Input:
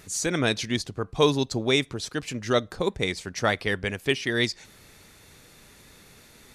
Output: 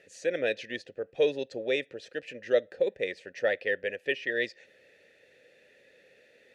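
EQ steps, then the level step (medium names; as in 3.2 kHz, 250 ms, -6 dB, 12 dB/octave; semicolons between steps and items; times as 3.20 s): vowel filter e; +6.0 dB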